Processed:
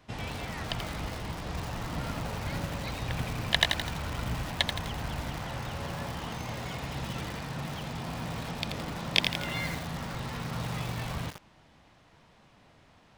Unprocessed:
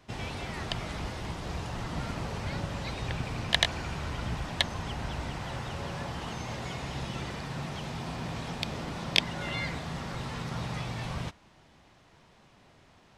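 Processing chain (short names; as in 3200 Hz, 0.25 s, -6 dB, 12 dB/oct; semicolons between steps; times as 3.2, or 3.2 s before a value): bell 6600 Hz -2.5 dB 1.1 oct; notch 380 Hz, Q 12; lo-fi delay 84 ms, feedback 55%, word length 6-bit, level -5 dB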